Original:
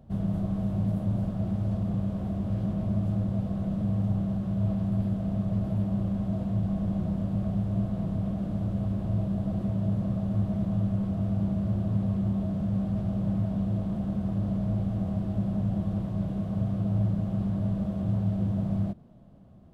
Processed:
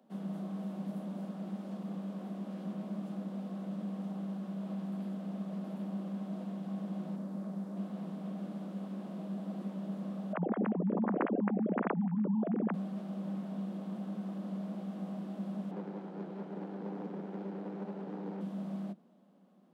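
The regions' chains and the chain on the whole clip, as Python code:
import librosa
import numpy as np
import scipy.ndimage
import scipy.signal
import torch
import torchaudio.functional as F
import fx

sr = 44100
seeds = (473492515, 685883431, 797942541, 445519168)

y = fx.chain(x, sr, fx.peak_eq(hz=2900.0, db=-8.0, octaves=0.89),
    fx.notch(hz=730.0, q=23.0), at=(7.16, 7.77))
y = fx.chain(y, sr, fx.sine_speech(),
    fx.lowpass(hz=1400.0, slope=12),
    fx.env_flatten(amount_pct=70), at=(10.33, 12.74))
y = fx.chain(y, sr, fx.lower_of_two(delay_ms=1.3),
    fx.lowpass(hz=2100.0, slope=6),
    fx.doppler_dist(depth_ms=0.61), at=(15.71, 18.41))
y = scipy.signal.sosfilt(scipy.signal.butter(16, 170.0, 'highpass', fs=sr, output='sos'), y)
y = fx.low_shelf(y, sr, hz=340.0, db=-6.5)
y = fx.notch(y, sr, hz=660.0, q=12.0)
y = y * librosa.db_to_amplitude(-3.5)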